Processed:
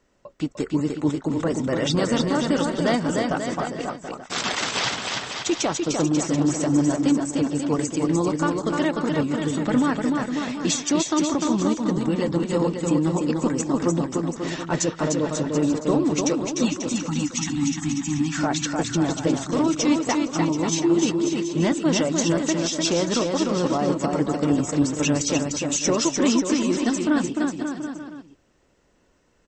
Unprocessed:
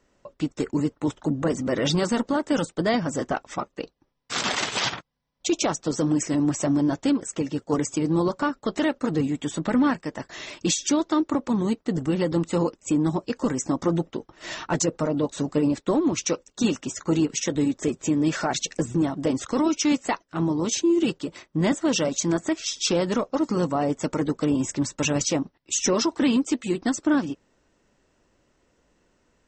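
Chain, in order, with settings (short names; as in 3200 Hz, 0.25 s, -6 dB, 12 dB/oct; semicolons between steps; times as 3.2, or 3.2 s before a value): spectral delete 16.63–18.39, 320–710 Hz; on a send: bouncing-ball echo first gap 0.3 s, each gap 0.8×, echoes 5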